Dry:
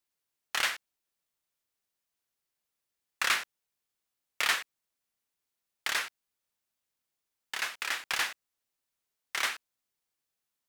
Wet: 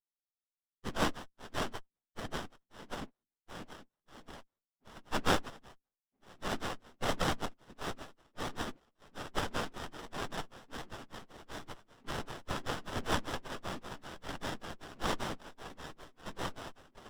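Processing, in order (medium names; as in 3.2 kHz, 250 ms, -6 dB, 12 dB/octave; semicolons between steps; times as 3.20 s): backward echo that repeats 412 ms, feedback 70%, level -4.5 dB; gate with hold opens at -50 dBFS; LFO low-pass square 8.2 Hz 250–3500 Hz; plain phase-vocoder stretch 1.6×; sliding maximum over 17 samples; trim +1 dB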